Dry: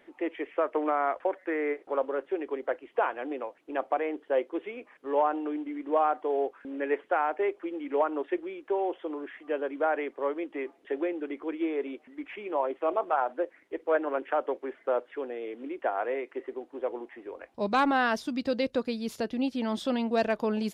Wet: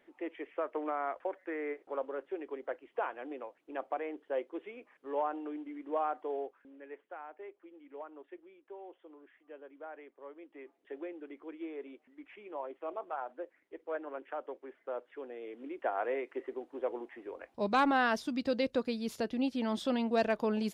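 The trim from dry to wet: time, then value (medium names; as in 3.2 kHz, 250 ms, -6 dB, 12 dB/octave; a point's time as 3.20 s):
6.33 s -8 dB
6.80 s -19.5 dB
10.22 s -19.5 dB
10.95 s -12 dB
14.83 s -12 dB
16.07 s -3 dB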